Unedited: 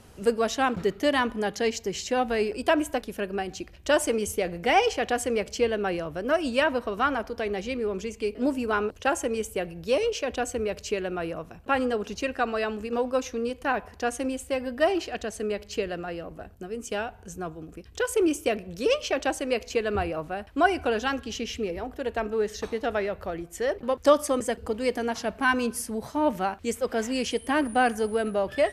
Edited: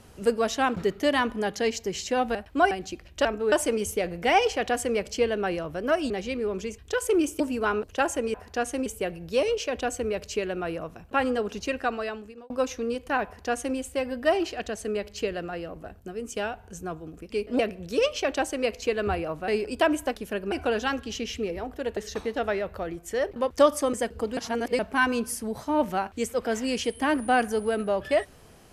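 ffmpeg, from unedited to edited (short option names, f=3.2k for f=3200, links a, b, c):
-filter_complex "[0:a]asplit=18[a][b][c][d][e][f][g][h][i][j][k][l][m][n][o][p][q][r];[a]atrim=end=2.352[s];[b]atrim=start=20.358:end=20.722[t];[c]atrim=start=3.388:end=3.932[u];[d]atrim=start=22.168:end=22.442[v];[e]atrim=start=3.928:end=6.512[w];[f]atrim=start=7.498:end=8.182[x];[g]atrim=start=17.848:end=18.472[y];[h]atrim=start=8.468:end=9.412[z];[i]atrim=start=13.798:end=14.322[aa];[j]atrim=start=9.408:end=13.05,asetpts=PTS-STARTPTS,afade=t=out:st=2.942:d=0.7[ab];[k]atrim=start=13.05:end=17.852,asetpts=PTS-STARTPTS,afade=t=in:d=0.004:c=hsin[ac];[l]atrim=start=8.178:end=8.472[ad];[m]atrim=start=18.468:end=20.362[ae];[n]atrim=start=2.348:end=3.392[af];[o]atrim=start=20.718:end=22.172[ag];[p]atrim=start=22.438:end=24.842[ah];[q]atrim=start=24.838:end=25.262,asetpts=PTS-STARTPTS,areverse[ai];[r]atrim=start=25.258[aj];[s][t]acrossfade=d=0.004:c1=hsin:c2=hsin[ak];[ak][u]acrossfade=d=0.004:c1=hsin:c2=hsin[al];[al][v]acrossfade=d=0.004:c1=hsin:c2=hsin[am];[am][w]acrossfade=d=0.004:c1=hsin:c2=hsin[an];[an][x]acrossfade=d=0.004:c1=hsin:c2=hsin[ao];[ao][y]acrossfade=d=0.004:c1=hsin:c2=hsin[ap];[ap][z]acrossfade=d=0.004:c1=hsin:c2=hsin[aq];[aq][aa]acrossfade=d=0.004:c1=hsin:c2=hsin[ar];[ab][ac]concat=n=2:v=0:a=1[as];[ar][as]acrossfade=d=0.004:c1=hsin:c2=hsin[at];[at][ad]acrossfade=d=0.004:c1=hsin:c2=hsin[au];[au][ae]acrossfade=d=0.004:c1=hsin:c2=hsin[av];[av][af]acrossfade=d=0.004:c1=hsin:c2=hsin[aw];[aw][ag]acrossfade=d=0.004:c1=hsin:c2=hsin[ax];[ax][ah]acrossfade=d=0.004:c1=hsin:c2=hsin[ay];[ay][ai]acrossfade=d=0.004:c1=hsin:c2=hsin[az];[az][aj]acrossfade=d=0.004:c1=hsin:c2=hsin"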